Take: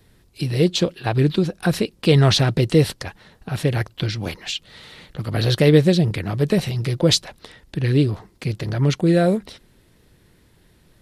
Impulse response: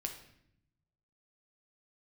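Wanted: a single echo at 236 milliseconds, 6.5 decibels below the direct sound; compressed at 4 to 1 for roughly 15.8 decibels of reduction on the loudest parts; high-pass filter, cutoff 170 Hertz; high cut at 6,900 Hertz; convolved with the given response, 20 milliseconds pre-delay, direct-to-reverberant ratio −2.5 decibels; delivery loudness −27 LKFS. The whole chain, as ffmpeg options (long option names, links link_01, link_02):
-filter_complex "[0:a]highpass=170,lowpass=6900,acompressor=threshold=-30dB:ratio=4,aecho=1:1:236:0.473,asplit=2[link_01][link_02];[1:a]atrim=start_sample=2205,adelay=20[link_03];[link_02][link_03]afir=irnorm=-1:irlink=0,volume=3dB[link_04];[link_01][link_04]amix=inputs=2:normalize=0,volume=1dB"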